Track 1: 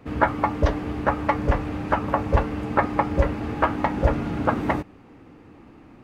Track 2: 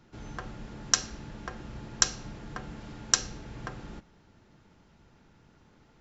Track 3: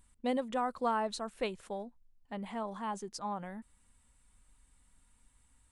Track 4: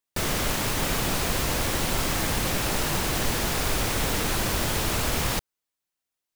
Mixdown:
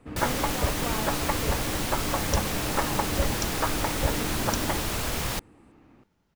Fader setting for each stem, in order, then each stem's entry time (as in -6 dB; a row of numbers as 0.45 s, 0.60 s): -7.5 dB, -11.0 dB, -4.5 dB, -3.5 dB; 0.00 s, 1.40 s, 0.00 s, 0.00 s